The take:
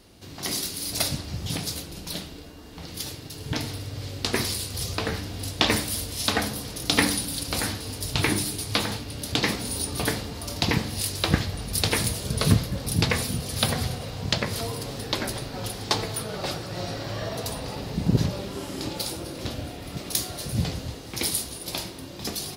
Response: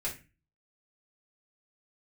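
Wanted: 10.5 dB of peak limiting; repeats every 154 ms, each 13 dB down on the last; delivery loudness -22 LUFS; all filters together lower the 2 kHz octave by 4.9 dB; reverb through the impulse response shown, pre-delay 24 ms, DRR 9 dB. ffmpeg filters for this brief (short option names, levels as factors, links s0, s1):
-filter_complex "[0:a]equalizer=f=2000:t=o:g=-6,alimiter=limit=0.188:level=0:latency=1,aecho=1:1:154|308|462:0.224|0.0493|0.0108,asplit=2[s0][s1];[1:a]atrim=start_sample=2205,adelay=24[s2];[s1][s2]afir=irnorm=-1:irlink=0,volume=0.251[s3];[s0][s3]amix=inputs=2:normalize=0,volume=2.24"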